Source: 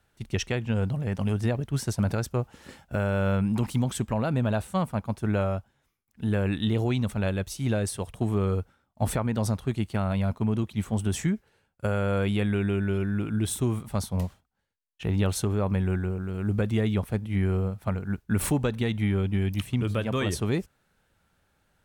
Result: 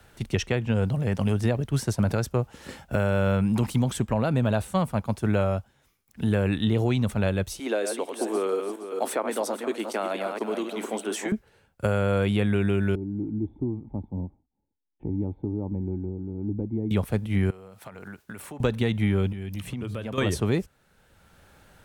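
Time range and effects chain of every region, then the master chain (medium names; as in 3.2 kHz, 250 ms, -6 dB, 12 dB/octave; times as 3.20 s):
7.59–11.32 s: backward echo that repeats 234 ms, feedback 41%, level -6.5 dB + steep high-pass 290 Hz
12.95–16.91 s: cascade formant filter u + bass shelf 78 Hz +11 dB
17.50–18.60 s: high-pass 650 Hz 6 dB/octave + compression 10:1, threshold -45 dBFS
19.32–20.18 s: hum notches 60/120/180 Hz + compression 12:1, threshold -35 dBFS
whole clip: peaking EQ 500 Hz +2 dB; three bands compressed up and down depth 40%; trim +2 dB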